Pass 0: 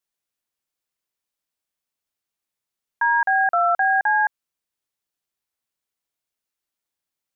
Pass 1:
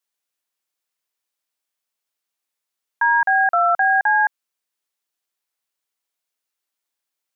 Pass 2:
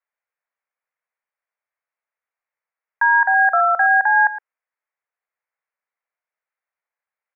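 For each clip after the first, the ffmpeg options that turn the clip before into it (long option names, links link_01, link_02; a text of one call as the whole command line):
ffmpeg -i in.wav -af "highpass=frequency=470:poles=1,volume=3dB" out.wav
ffmpeg -i in.wav -af "asuperpass=centerf=1000:order=12:qfactor=0.56,aecho=1:1:114:0.2,crystalizer=i=3:c=0" out.wav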